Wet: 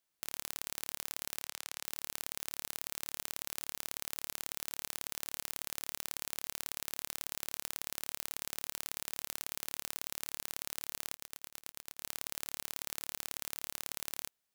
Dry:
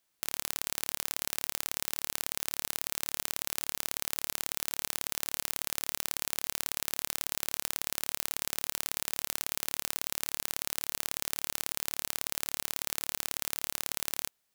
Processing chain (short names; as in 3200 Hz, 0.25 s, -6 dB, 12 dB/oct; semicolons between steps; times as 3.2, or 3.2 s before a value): 1.42–1.85 weighting filter A; 11.16–12.05 auto swell 0.119 s; gain -6.5 dB